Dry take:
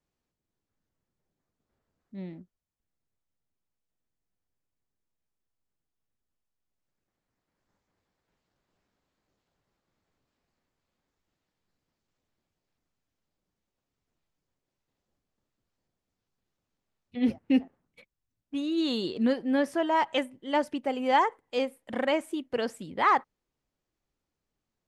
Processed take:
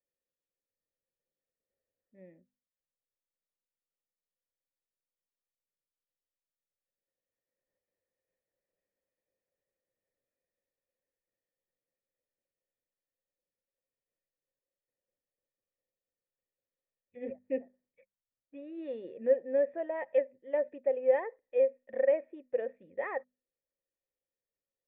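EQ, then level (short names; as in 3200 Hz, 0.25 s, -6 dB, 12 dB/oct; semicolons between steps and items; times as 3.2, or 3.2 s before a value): notches 50/100/150/200/250 Hz; dynamic EQ 620 Hz, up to +7 dB, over -40 dBFS, Q 1.6; vocal tract filter e; 0.0 dB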